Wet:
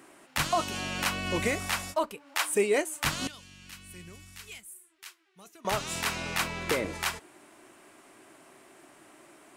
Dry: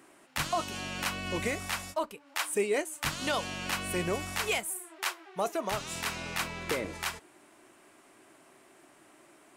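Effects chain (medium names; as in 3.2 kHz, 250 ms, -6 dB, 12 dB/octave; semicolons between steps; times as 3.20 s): 3.27–5.65 s: amplifier tone stack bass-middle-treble 6-0-2; trim +3.5 dB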